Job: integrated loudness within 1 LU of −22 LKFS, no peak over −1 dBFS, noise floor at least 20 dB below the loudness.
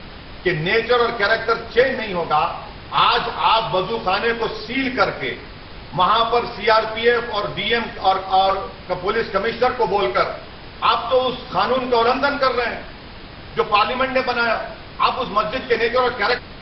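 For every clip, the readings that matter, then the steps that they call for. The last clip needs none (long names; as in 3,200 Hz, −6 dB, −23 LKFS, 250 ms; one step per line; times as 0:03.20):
mains hum 50 Hz; hum harmonics up to 200 Hz; level of the hum −47 dBFS; background noise floor −37 dBFS; target noise floor −40 dBFS; integrated loudness −19.5 LKFS; sample peak −2.0 dBFS; target loudness −22.0 LKFS
→ hum removal 50 Hz, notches 4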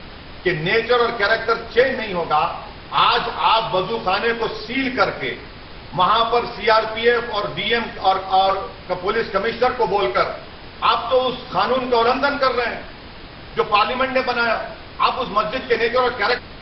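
mains hum none found; background noise floor −38 dBFS; target noise floor −40 dBFS
→ noise reduction from a noise print 6 dB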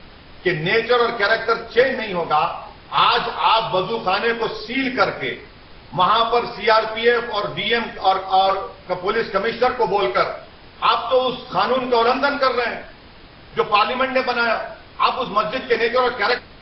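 background noise floor −44 dBFS; integrated loudness −19.5 LKFS; sample peak −2.0 dBFS; target loudness −22.0 LKFS
→ level −2.5 dB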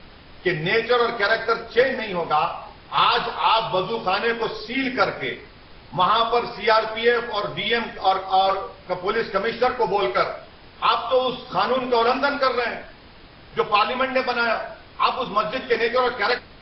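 integrated loudness −22.0 LKFS; sample peak −4.5 dBFS; background noise floor −46 dBFS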